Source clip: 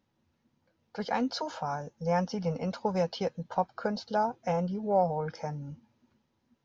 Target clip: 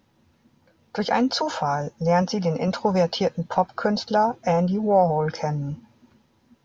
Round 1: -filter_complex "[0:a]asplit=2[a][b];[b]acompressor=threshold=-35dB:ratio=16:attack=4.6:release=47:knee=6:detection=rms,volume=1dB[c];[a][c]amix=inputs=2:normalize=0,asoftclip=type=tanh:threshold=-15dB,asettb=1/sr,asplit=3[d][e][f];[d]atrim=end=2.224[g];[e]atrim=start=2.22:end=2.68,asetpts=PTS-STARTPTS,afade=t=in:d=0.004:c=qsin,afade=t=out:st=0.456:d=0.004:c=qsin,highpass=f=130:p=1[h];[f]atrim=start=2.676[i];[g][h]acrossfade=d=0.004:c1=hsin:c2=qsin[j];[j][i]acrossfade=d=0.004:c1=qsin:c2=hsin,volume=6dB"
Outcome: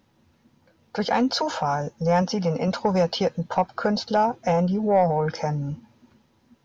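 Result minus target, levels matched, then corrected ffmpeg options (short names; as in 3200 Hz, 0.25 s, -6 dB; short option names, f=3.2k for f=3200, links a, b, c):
soft clip: distortion +22 dB
-filter_complex "[0:a]asplit=2[a][b];[b]acompressor=threshold=-35dB:ratio=16:attack=4.6:release=47:knee=6:detection=rms,volume=1dB[c];[a][c]amix=inputs=2:normalize=0,asoftclip=type=tanh:threshold=-3dB,asettb=1/sr,asplit=3[d][e][f];[d]atrim=end=2.224[g];[e]atrim=start=2.22:end=2.68,asetpts=PTS-STARTPTS,afade=t=in:d=0.004:c=qsin,afade=t=out:st=0.456:d=0.004:c=qsin,highpass=f=130:p=1[h];[f]atrim=start=2.676[i];[g][h]acrossfade=d=0.004:c1=hsin:c2=qsin[j];[j][i]acrossfade=d=0.004:c1=qsin:c2=hsin,volume=6dB"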